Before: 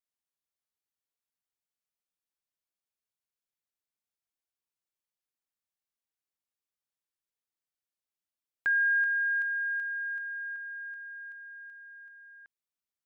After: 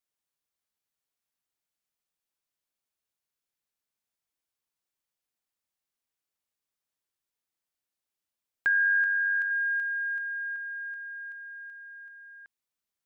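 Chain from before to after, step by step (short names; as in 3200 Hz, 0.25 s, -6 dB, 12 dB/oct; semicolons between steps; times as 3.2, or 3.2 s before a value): 8.68–9.51 AM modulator 95 Hz, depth 25%; gain +3.5 dB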